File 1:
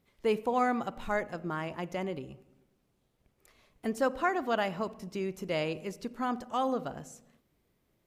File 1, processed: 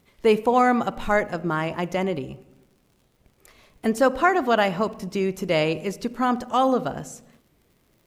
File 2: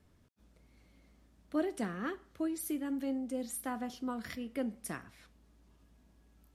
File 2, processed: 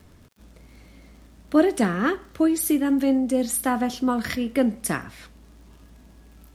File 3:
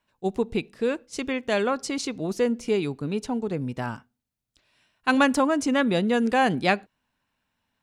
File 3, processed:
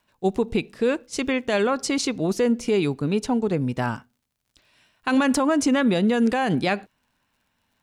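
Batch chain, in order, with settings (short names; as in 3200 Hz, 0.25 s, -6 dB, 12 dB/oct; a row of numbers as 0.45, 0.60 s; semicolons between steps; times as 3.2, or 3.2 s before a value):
limiter -17.5 dBFS; crackle 72/s -60 dBFS; match loudness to -23 LUFS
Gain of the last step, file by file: +10.0, +15.0, +5.5 dB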